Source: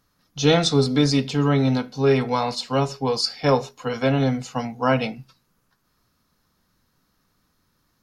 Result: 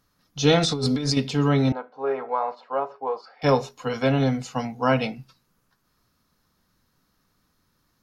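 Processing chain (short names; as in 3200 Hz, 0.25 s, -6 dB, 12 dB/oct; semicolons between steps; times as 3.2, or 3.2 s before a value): 0.59–1.17 negative-ratio compressor -23 dBFS, ratio -1; 1.72–3.42 Butterworth band-pass 830 Hz, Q 0.89; gain -1 dB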